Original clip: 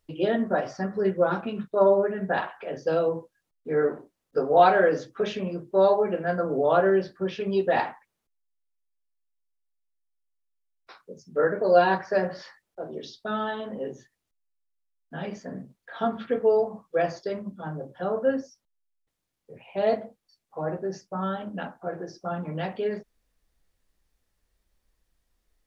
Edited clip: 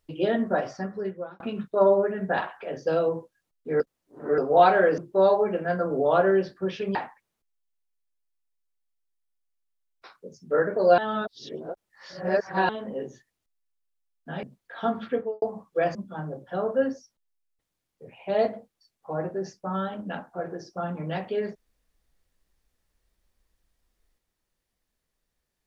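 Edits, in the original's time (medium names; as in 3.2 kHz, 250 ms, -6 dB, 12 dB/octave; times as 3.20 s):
0.63–1.40 s: fade out
3.80–4.38 s: reverse
4.98–5.57 s: delete
7.54–7.80 s: delete
11.83–13.54 s: reverse
15.28–15.61 s: delete
16.28–16.60 s: studio fade out
17.13–17.43 s: delete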